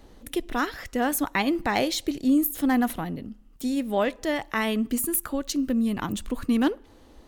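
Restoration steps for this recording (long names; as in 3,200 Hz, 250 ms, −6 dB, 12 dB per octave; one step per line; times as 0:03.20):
clipped peaks rebuilt −13 dBFS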